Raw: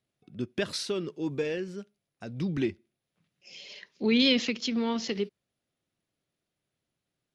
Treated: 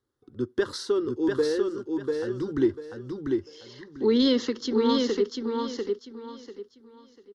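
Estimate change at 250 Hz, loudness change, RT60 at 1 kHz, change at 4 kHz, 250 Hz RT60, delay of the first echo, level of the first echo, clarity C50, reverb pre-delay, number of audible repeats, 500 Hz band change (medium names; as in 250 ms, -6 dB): +4.0 dB, +2.5 dB, no reverb, -2.5 dB, no reverb, 694 ms, -3.5 dB, no reverb, no reverb, 3, +8.0 dB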